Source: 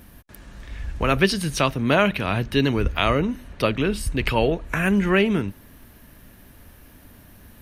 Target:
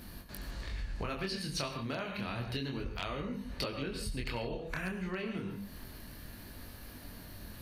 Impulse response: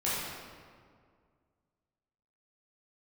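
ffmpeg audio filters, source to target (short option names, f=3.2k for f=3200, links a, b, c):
-filter_complex "[0:a]asplit=2[a][b];[1:a]atrim=start_sample=2205,atrim=end_sample=3969,adelay=70[c];[b][c]afir=irnorm=-1:irlink=0,volume=-13.5dB[d];[a][d]amix=inputs=2:normalize=0,acompressor=threshold=-34dB:ratio=8,flanger=delay=20:depth=7.3:speed=0.3,volume=28.5dB,asoftclip=hard,volume=-28.5dB,equalizer=f=4.4k:w=5:g=12.5,volume=2dB"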